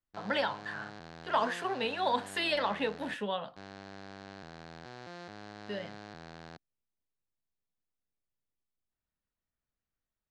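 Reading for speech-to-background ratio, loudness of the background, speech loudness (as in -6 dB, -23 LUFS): 15.0 dB, -48.5 LUFS, -33.5 LUFS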